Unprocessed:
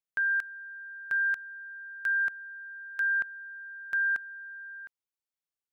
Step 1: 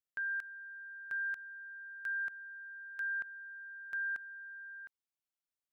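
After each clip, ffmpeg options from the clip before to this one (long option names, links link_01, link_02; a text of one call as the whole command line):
ffmpeg -i in.wav -af "alimiter=level_in=4dB:limit=-24dB:level=0:latency=1,volume=-4dB,volume=-5dB" out.wav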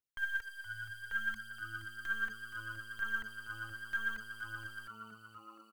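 ffmpeg -i in.wav -filter_complex "[0:a]asplit=2[link_01][link_02];[link_02]acrusher=bits=5:dc=4:mix=0:aa=0.000001,volume=-5dB[link_03];[link_01][link_03]amix=inputs=2:normalize=0,aphaser=in_gain=1:out_gain=1:delay=4:decay=0.64:speed=0.66:type=triangular,asplit=8[link_04][link_05][link_06][link_07][link_08][link_09][link_10][link_11];[link_05]adelay=471,afreqshift=-110,volume=-10.5dB[link_12];[link_06]adelay=942,afreqshift=-220,volume=-14.8dB[link_13];[link_07]adelay=1413,afreqshift=-330,volume=-19.1dB[link_14];[link_08]adelay=1884,afreqshift=-440,volume=-23.4dB[link_15];[link_09]adelay=2355,afreqshift=-550,volume=-27.7dB[link_16];[link_10]adelay=2826,afreqshift=-660,volume=-32dB[link_17];[link_11]adelay=3297,afreqshift=-770,volume=-36.3dB[link_18];[link_04][link_12][link_13][link_14][link_15][link_16][link_17][link_18]amix=inputs=8:normalize=0,volume=-5dB" out.wav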